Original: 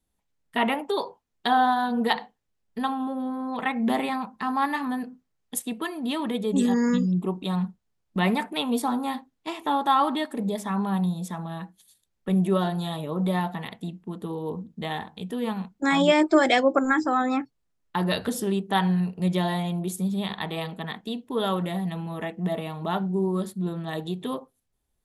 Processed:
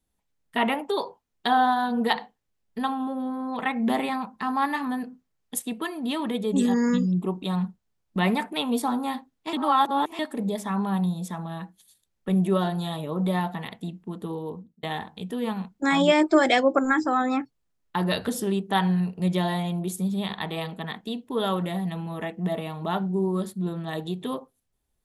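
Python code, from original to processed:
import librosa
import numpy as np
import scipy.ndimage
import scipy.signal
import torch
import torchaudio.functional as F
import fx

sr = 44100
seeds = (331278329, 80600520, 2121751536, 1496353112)

y = fx.edit(x, sr, fx.reverse_span(start_s=9.53, length_s=0.66),
    fx.fade_out_span(start_s=14.35, length_s=0.48), tone=tone)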